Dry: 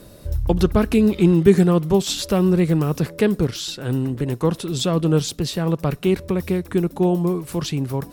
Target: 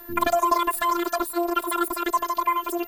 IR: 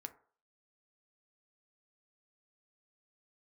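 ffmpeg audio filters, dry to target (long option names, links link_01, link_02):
-af "asetrate=124803,aresample=44100,afftfilt=real='hypot(re,im)*cos(PI*b)':imag='0':win_size=512:overlap=0.75,aeval=exprs='val(0)+0.00794*sin(2*PI*14000*n/s)':channel_layout=same"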